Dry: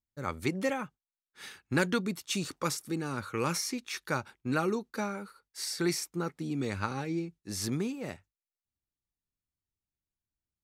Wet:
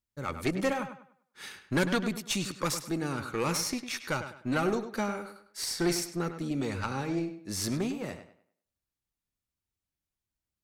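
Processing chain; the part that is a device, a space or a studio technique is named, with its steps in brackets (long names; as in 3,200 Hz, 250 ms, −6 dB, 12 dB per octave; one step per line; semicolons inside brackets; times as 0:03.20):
rockabilly slapback (tube saturation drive 23 dB, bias 0.6; tape delay 101 ms, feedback 33%, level −9 dB, low-pass 3,800 Hz)
level +5 dB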